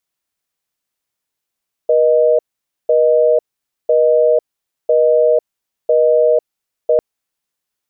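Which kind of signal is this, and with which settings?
call progress tone busy tone, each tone -11.5 dBFS 5.10 s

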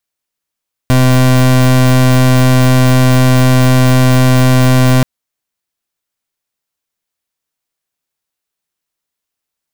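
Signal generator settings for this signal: pulse 128 Hz, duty 30% -7.5 dBFS 4.13 s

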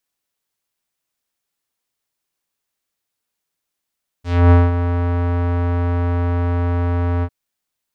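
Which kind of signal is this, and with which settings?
synth note square F2 12 dB/oct, low-pass 1400 Hz, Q 0.91, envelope 2.5 oct, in 0.18 s, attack 0.27 s, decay 0.20 s, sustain -10 dB, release 0.06 s, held 2.99 s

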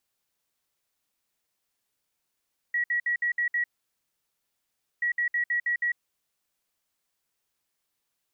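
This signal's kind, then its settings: beep pattern sine 1920 Hz, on 0.10 s, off 0.06 s, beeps 6, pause 1.38 s, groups 2, -23 dBFS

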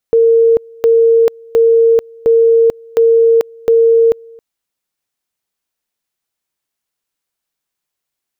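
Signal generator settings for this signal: two-level tone 458 Hz -5.5 dBFS, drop 28 dB, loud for 0.44 s, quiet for 0.27 s, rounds 6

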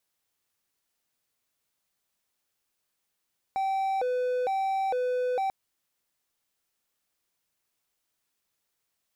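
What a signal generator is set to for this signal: siren hi-lo 500–774 Hz 1.1/s triangle -23 dBFS 1.94 s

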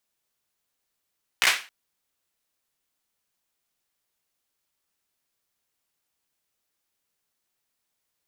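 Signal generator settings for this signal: hand clap length 0.27 s, apart 16 ms, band 2100 Hz, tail 0.33 s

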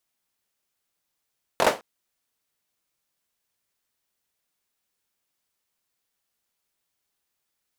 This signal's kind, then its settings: hand clap length 0.21 s, apart 22 ms, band 580 Hz, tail 0.24 s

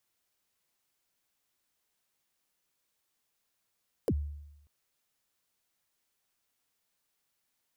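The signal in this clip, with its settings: kick drum length 0.59 s, from 570 Hz, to 73 Hz, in 54 ms, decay 0.91 s, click on, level -23 dB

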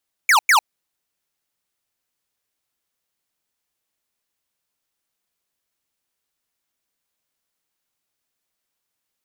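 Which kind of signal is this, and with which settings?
burst of laser zaps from 2400 Hz, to 780 Hz, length 0.10 s square, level -13 dB, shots 2, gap 0.10 s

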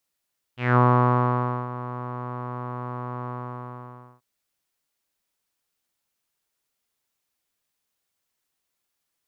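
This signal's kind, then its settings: synth note saw B2 12 dB/oct, low-pass 1100 Hz, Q 5.1, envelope 1.5 oct, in 0.21 s, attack 0.194 s, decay 0.91 s, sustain -16 dB, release 0.93 s, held 2.71 s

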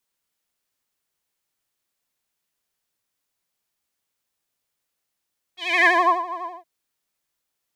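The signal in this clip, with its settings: synth patch with vibrato F5, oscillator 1 triangle, interval +7 st, sub -1.5 dB, filter bandpass, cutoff 840 Hz, Q 4.7, filter envelope 2 oct, filter decay 0.52 s, filter sustain 15%, attack 0.283 s, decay 0.37 s, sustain -20.5 dB, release 0.22 s, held 0.85 s, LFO 12 Hz, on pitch 94 cents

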